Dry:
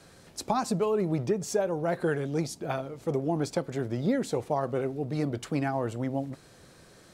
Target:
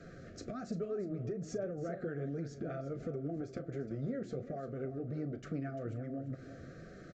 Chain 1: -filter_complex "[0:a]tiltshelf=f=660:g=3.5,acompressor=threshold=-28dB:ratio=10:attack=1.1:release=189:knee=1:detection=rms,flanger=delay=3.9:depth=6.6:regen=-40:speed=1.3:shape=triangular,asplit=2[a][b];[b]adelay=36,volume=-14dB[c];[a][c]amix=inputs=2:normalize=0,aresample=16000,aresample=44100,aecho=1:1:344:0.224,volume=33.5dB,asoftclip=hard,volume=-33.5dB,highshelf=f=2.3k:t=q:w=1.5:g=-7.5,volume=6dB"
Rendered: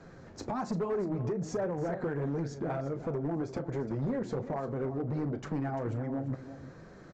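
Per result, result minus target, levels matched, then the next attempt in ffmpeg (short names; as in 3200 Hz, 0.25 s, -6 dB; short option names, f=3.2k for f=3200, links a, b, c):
compressor: peak gain reduction -6.5 dB; 1000 Hz band +5.0 dB
-filter_complex "[0:a]tiltshelf=f=660:g=3.5,acompressor=threshold=-35.5dB:ratio=10:attack=1.1:release=189:knee=1:detection=rms,flanger=delay=3.9:depth=6.6:regen=-40:speed=1.3:shape=triangular,asplit=2[a][b];[b]adelay=36,volume=-14dB[c];[a][c]amix=inputs=2:normalize=0,aresample=16000,aresample=44100,aecho=1:1:344:0.224,volume=33.5dB,asoftclip=hard,volume=-33.5dB,highshelf=f=2.3k:t=q:w=1.5:g=-7.5,volume=6dB"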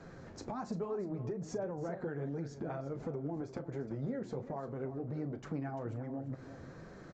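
1000 Hz band +4.5 dB
-filter_complex "[0:a]tiltshelf=f=660:g=3.5,acompressor=threshold=-35.5dB:ratio=10:attack=1.1:release=189:knee=1:detection=rms,flanger=delay=3.9:depth=6.6:regen=-40:speed=1.3:shape=triangular,asplit=2[a][b];[b]adelay=36,volume=-14dB[c];[a][c]amix=inputs=2:normalize=0,aresample=16000,aresample=44100,aecho=1:1:344:0.224,volume=33.5dB,asoftclip=hard,volume=-33.5dB,asuperstop=centerf=930:order=12:qfactor=2.2,highshelf=f=2.3k:t=q:w=1.5:g=-7.5,volume=6dB"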